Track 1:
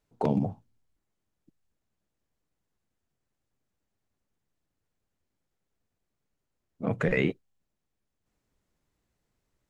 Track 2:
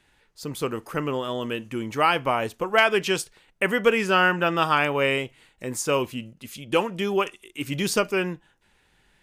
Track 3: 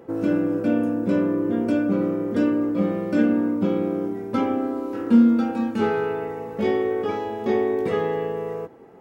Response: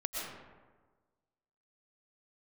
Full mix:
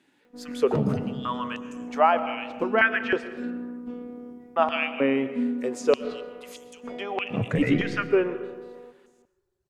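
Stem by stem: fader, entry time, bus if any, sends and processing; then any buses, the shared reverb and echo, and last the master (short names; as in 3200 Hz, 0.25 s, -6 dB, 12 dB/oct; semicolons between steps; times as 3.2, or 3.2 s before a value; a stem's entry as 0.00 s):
-5.0 dB, 0.50 s, send -6 dB, reverb removal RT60 2 s
-6.0 dB, 0.00 s, muted 3.61–4.56, send -12.5 dB, treble ducked by the level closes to 2000 Hz, closed at -20.5 dBFS; bell 9400 Hz -3.5 dB 0.22 oct; stepped high-pass 3.2 Hz 270–6600 Hz
-15.0 dB, 0.25 s, no send, robotiser 244 Hz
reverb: on, RT60 1.4 s, pre-delay 80 ms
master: bell 110 Hz +7.5 dB 1.8 oct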